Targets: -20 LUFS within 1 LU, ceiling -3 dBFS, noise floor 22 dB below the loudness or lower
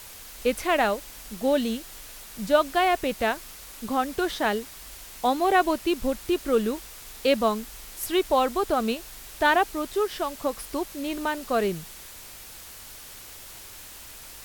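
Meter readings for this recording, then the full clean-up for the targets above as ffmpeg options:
noise floor -44 dBFS; noise floor target -48 dBFS; loudness -26.0 LUFS; peak level -7.5 dBFS; loudness target -20.0 LUFS
-> -af "afftdn=nr=6:nf=-44"
-af "volume=2,alimiter=limit=0.708:level=0:latency=1"

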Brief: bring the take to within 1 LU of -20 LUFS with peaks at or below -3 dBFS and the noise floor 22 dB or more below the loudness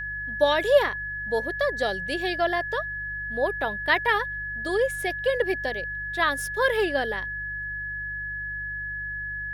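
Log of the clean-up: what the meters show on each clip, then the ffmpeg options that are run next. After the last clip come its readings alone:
hum 50 Hz; highest harmonic 150 Hz; hum level -40 dBFS; steady tone 1.7 kHz; tone level -30 dBFS; loudness -26.0 LUFS; peak level -7.5 dBFS; loudness target -20.0 LUFS
-> -af "bandreject=f=50:t=h:w=4,bandreject=f=100:t=h:w=4,bandreject=f=150:t=h:w=4"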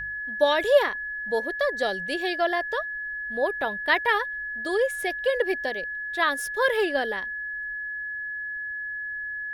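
hum not found; steady tone 1.7 kHz; tone level -30 dBFS
-> -af "bandreject=f=1700:w=30"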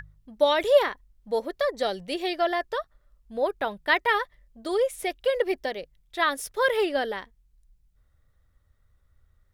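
steady tone not found; loudness -26.0 LUFS; peak level -7.5 dBFS; loudness target -20.0 LUFS
-> -af "volume=2,alimiter=limit=0.708:level=0:latency=1"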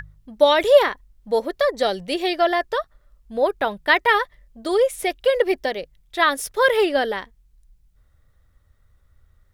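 loudness -20.0 LUFS; peak level -3.0 dBFS; noise floor -60 dBFS

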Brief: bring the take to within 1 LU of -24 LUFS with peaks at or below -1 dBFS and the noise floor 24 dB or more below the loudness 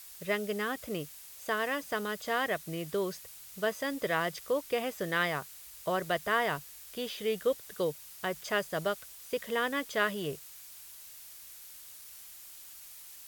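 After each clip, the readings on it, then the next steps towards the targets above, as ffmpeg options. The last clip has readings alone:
noise floor -50 dBFS; noise floor target -58 dBFS; loudness -33.5 LUFS; peak level -14.0 dBFS; loudness target -24.0 LUFS
-> -af "afftdn=nr=8:nf=-50"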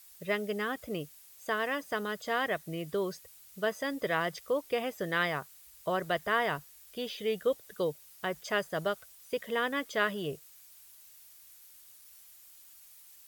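noise floor -56 dBFS; noise floor target -58 dBFS
-> -af "afftdn=nr=6:nf=-56"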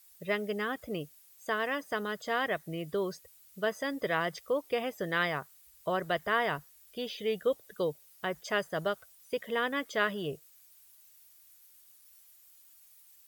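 noise floor -60 dBFS; loudness -33.5 LUFS; peak level -14.0 dBFS; loudness target -24.0 LUFS
-> -af "volume=2.99"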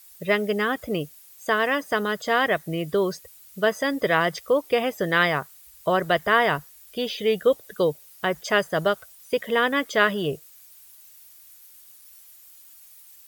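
loudness -24.0 LUFS; peak level -4.5 dBFS; noise floor -50 dBFS

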